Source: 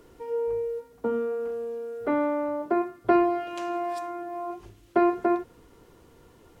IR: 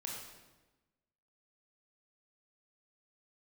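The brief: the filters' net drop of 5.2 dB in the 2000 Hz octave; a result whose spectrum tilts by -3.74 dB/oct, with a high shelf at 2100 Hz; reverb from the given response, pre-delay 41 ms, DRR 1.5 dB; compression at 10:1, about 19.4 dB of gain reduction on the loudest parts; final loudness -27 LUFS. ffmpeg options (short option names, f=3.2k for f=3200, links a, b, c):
-filter_complex "[0:a]equalizer=f=2k:t=o:g=-3.5,highshelf=f=2.1k:g=-7.5,acompressor=threshold=-37dB:ratio=10,asplit=2[a][b];[1:a]atrim=start_sample=2205,adelay=41[c];[b][c]afir=irnorm=-1:irlink=0,volume=-0.5dB[d];[a][d]amix=inputs=2:normalize=0,volume=12dB"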